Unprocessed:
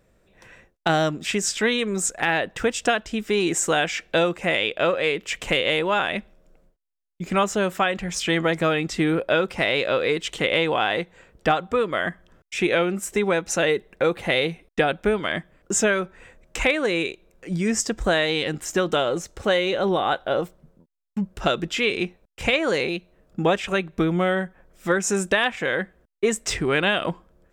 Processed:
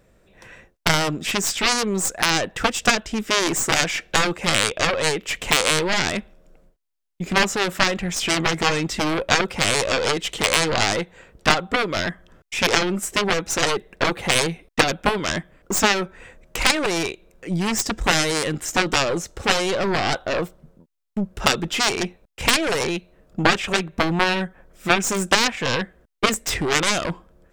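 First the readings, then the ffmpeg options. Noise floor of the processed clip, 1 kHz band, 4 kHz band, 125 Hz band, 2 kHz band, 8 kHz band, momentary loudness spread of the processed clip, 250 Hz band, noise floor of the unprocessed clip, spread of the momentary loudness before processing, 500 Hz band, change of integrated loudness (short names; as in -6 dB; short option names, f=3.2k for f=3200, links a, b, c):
-60 dBFS, +3.0 dB, +5.5 dB, +2.0 dB, +2.5 dB, +5.5 dB, 8 LU, 0.0 dB, -64 dBFS, 7 LU, -2.0 dB, +2.0 dB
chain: -af "aeval=exprs='0.398*(cos(1*acos(clip(val(0)/0.398,-1,1)))-cos(1*PI/2))+0.178*(cos(3*acos(clip(val(0)/0.398,-1,1)))-cos(3*PI/2))+0.00891*(cos(6*acos(clip(val(0)/0.398,-1,1)))-cos(6*PI/2))':c=same,apsyclip=15.5dB,volume=-2dB"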